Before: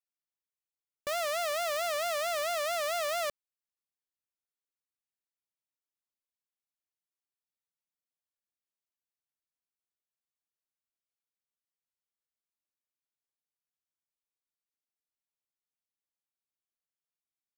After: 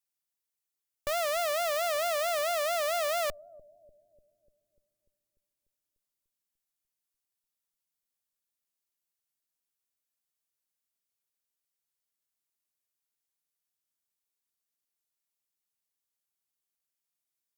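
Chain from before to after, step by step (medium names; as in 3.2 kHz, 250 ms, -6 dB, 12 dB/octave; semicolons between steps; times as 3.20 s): treble shelf 4.9 kHz +9.5 dB; Chebyshev shaper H 2 -7 dB, 6 -13 dB, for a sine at -16 dBFS; bucket-brigade echo 295 ms, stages 1024, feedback 69%, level -17 dB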